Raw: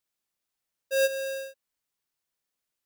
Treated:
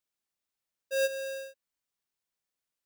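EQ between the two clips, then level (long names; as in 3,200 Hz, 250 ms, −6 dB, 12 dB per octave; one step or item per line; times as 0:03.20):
parametric band 12,000 Hz −5 dB 0.21 octaves
−4.0 dB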